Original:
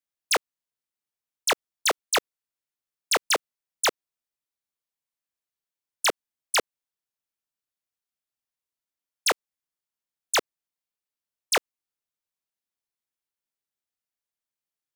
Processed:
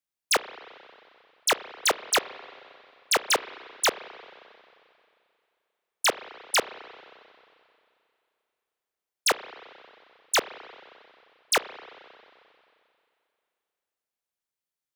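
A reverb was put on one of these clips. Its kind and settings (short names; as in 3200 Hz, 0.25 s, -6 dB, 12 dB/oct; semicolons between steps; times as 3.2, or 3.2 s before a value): spring tank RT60 2.6 s, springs 31/44 ms, chirp 30 ms, DRR 13.5 dB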